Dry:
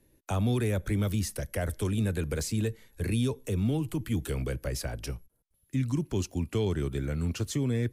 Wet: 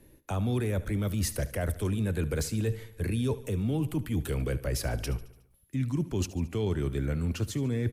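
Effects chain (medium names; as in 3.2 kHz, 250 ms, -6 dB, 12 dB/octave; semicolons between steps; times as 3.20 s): peaking EQ 6.4 kHz -4 dB 1.6 oct; reverse; compression 6:1, threshold -35 dBFS, peak gain reduction 11.5 dB; reverse; feedback delay 73 ms, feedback 56%, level -17 dB; trim +8.5 dB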